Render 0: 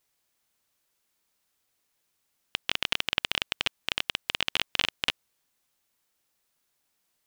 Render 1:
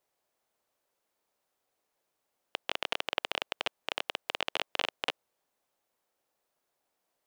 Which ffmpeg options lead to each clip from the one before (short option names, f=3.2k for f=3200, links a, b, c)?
-filter_complex "[0:a]equalizer=f=600:t=o:w=2.2:g=14,acrossover=split=330[a][b];[a]alimiter=level_in=8.5dB:limit=-24dB:level=0:latency=1,volume=-8.5dB[c];[c][b]amix=inputs=2:normalize=0,volume=-8.5dB"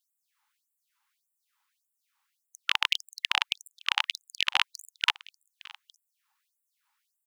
-filter_complex "[0:a]asplit=2[a][b];[b]adynamicsmooth=sensitivity=7:basefreq=4.1k,volume=0dB[c];[a][c]amix=inputs=2:normalize=0,aecho=1:1:860:0.075,afftfilt=real='re*gte(b*sr/1024,770*pow(7400/770,0.5+0.5*sin(2*PI*1.7*pts/sr)))':imag='im*gte(b*sr/1024,770*pow(7400/770,0.5+0.5*sin(2*PI*1.7*pts/sr)))':win_size=1024:overlap=0.75,volume=4dB"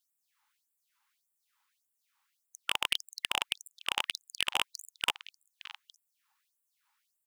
-af "asoftclip=type=hard:threshold=-14.5dB"